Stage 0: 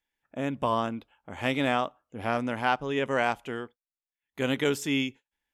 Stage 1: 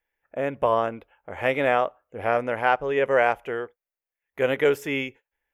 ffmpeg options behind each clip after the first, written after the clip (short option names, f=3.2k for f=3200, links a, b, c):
-af "equalizer=f=125:t=o:w=1:g=-5,equalizer=f=250:t=o:w=1:g=-10,equalizer=f=500:t=o:w=1:g=7,equalizer=f=1k:t=o:w=1:g=-3,equalizer=f=2k:t=o:w=1:g=4,equalizer=f=4k:t=o:w=1:g=-12,equalizer=f=8k:t=o:w=1:g=-11,volume=5dB"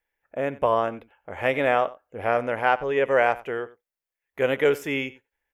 -af "aecho=1:1:91:0.112"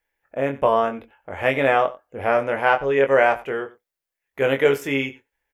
-filter_complex "[0:a]asplit=2[a][b];[b]adelay=22,volume=-6dB[c];[a][c]amix=inputs=2:normalize=0,volume=2.5dB"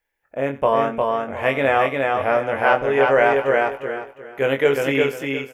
-af "aecho=1:1:355|710|1065|1420:0.708|0.184|0.0479|0.0124"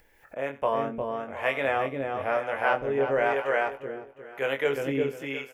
-filter_complex "[0:a]acompressor=mode=upward:threshold=-29dB:ratio=2.5,acrossover=split=500[a][b];[a]aeval=exprs='val(0)*(1-0.7/2+0.7/2*cos(2*PI*1*n/s))':c=same[c];[b]aeval=exprs='val(0)*(1-0.7/2-0.7/2*cos(2*PI*1*n/s))':c=same[d];[c][d]amix=inputs=2:normalize=0,volume=-5dB"